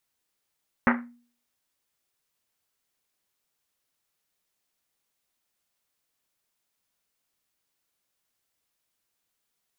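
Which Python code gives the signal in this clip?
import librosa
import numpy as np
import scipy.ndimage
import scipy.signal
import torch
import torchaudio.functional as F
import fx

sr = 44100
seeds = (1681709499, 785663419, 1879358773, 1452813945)

y = fx.risset_drum(sr, seeds[0], length_s=1.1, hz=240.0, decay_s=0.47, noise_hz=1400.0, noise_width_hz=1300.0, noise_pct=45)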